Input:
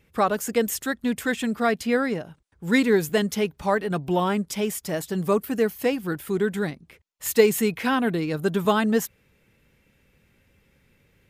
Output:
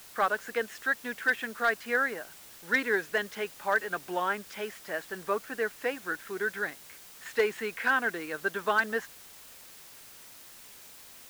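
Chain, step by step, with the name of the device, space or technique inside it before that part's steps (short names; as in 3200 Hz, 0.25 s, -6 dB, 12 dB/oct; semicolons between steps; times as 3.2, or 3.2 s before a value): drive-through speaker (BPF 440–3400 Hz; bell 1600 Hz +11.5 dB 0.57 oct; hard clip -10.5 dBFS, distortion -22 dB; white noise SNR 18 dB); gain -6.5 dB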